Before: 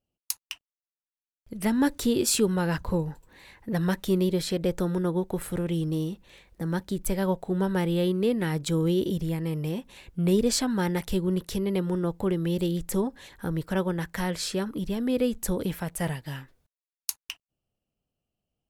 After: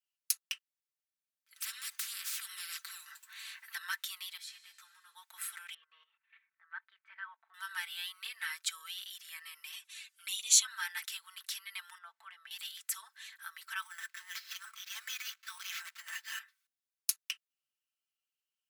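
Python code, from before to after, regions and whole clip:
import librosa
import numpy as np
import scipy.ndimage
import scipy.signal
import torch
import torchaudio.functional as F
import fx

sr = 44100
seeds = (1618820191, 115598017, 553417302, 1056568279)

y = fx.chain(x, sr, fx.low_shelf(hz=400.0, db=-5.5),
    fx.spectral_comp(ratio=10.0), at=(1.56, 3.75))
y = fx.chain(y, sr, fx.comb_fb(f0_hz=91.0, decay_s=1.9, harmonics='all', damping=0.0, mix_pct=70),
    fx.ensemble(), at=(4.37, 5.15))
y = fx.chain(y, sr, fx.lowpass(hz=2100.0, slope=24),
    fx.level_steps(step_db=14), at=(5.74, 7.54))
y = fx.chain(y, sr, fx.lowpass(hz=11000.0, slope=12),
    fx.high_shelf(hz=3700.0, db=12.0),
    fx.env_flanger(rest_ms=4.2, full_db=-19.5), at=(9.72, 10.65))
y = fx.chain(y, sr, fx.lowpass(hz=1100.0, slope=6),
    fx.peak_eq(hz=730.0, db=9.0, octaves=0.24), at=(11.98, 12.51))
y = fx.chain(y, sr, fx.steep_highpass(hz=570.0, slope=96),
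    fx.over_compress(threshold_db=-40.0, ratio=-0.5),
    fx.sample_hold(seeds[0], rate_hz=9300.0, jitter_pct=0), at=(13.82, 16.39))
y = scipy.signal.sosfilt(scipy.signal.butter(6, 1300.0, 'highpass', fs=sr, output='sos'), y)
y = y + 0.77 * np.pad(y, (int(4.5 * sr / 1000.0), 0))[:len(y)]
y = y * librosa.db_to_amplitude(-2.5)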